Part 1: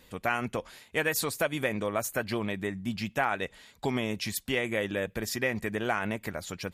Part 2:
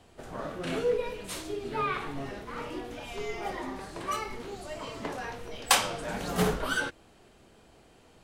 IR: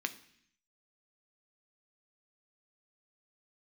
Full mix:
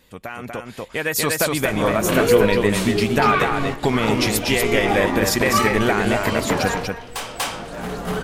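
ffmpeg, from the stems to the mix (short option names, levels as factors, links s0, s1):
-filter_complex "[0:a]alimiter=limit=0.0944:level=0:latency=1:release=258,volume=1.12,asplit=3[s0][s1][s2];[s1]volume=0.631[s3];[1:a]asoftclip=type=tanh:threshold=0.106,adynamicequalizer=threshold=0.00398:dfrequency=2900:dqfactor=0.7:tfrequency=2900:tqfactor=0.7:attack=5:release=100:ratio=0.375:range=2.5:mode=cutabove:tftype=highshelf,adelay=1450,volume=1.26,asplit=2[s4][s5];[s5]volume=0.266[s6];[s2]apad=whole_len=427313[s7];[s4][s7]sidechaingate=range=0.158:threshold=0.00178:ratio=16:detection=peak[s8];[s3][s6]amix=inputs=2:normalize=0,aecho=0:1:241:1[s9];[s0][s8][s9]amix=inputs=3:normalize=0,dynaudnorm=f=670:g=3:m=3.98"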